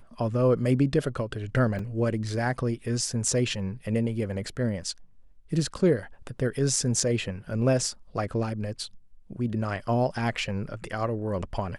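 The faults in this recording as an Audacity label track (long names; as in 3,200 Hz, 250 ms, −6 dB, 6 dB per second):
1.790000	1.790000	drop-out 3 ms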